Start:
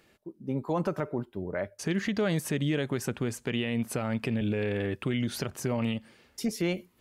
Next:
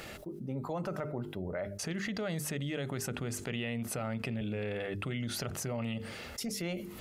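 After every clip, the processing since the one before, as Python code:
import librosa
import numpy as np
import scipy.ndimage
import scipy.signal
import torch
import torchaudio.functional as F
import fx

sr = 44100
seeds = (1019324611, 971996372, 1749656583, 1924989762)

y = fx.hum_notches(x, sr, base_hz=50, count=9)
y = y + 0.3 * np.pad(y, (int(1.5 * sr / 1000.0), 0))[:len(y)]
y = fx.env_flatten(y, sr, amount_pct=70)
y = y * 10.0 ** (-8.5 / 20.0)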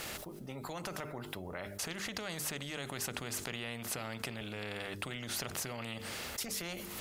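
y = fx.spectral_comp(x, sr, ratio=2.0)
y = y * 10.0 ** (3.0 / 20.0)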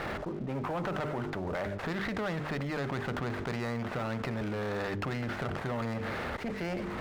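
y = scipy.signal.sosfilt(scipy.signal.butter(4, 2000.0, 'lowpass', fs=sr, output='sos'), x)
y = fx.leveller(y, sr, passes=3)
y = fx.running_max(y, sr, window=5)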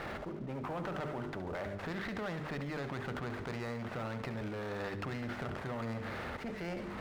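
y = fx.echo_feedback(x, sr, ms=70, feedback_pct=55, wet_db=-12.5)
y = y * 10.0 ** (-5.5 / 20.0)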